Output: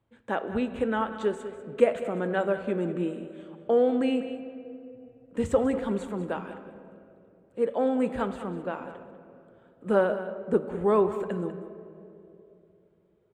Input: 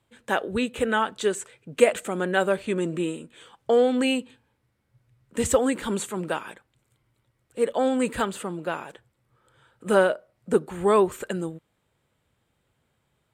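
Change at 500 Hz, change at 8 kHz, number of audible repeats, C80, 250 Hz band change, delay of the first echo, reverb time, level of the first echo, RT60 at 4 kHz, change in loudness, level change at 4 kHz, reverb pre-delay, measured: −2.5 dB, below −15 dB, 1, 10.0 dB, −1.5 dB, 196 ms, 2.8 s, −13.5 dB, 1.5 s, −3.0 dB, −12.0 dB, 4 ms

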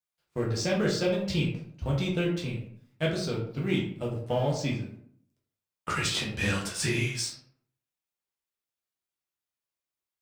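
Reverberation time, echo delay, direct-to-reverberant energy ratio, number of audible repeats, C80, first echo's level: 0.60 s, no echo audible, −4.0 dB, no echo audible, 9.0 dB, no echo audible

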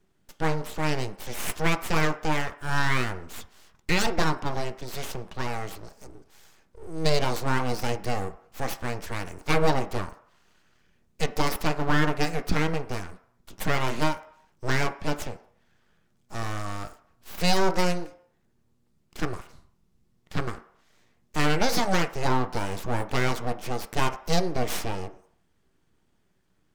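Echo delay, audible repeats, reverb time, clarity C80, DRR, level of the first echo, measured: no echo audible, no echo audible, 0.65 s, 17.5 dB, 8.0 dB, no echo audible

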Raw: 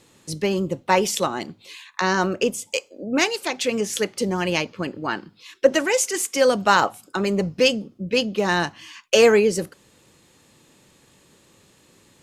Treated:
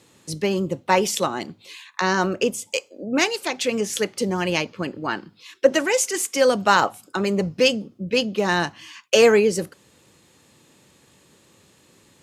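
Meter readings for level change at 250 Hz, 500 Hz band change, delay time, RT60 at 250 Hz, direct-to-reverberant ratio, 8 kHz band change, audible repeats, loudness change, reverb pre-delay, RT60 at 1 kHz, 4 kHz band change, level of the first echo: 0.0 dB, 0.0 dB, no echo audible, no reverb audible, no reverb audible, 0.0 dB, no echo audible, 0.0 dB, no reverb audible, no reverb audible, 0.0 dB, no echo audible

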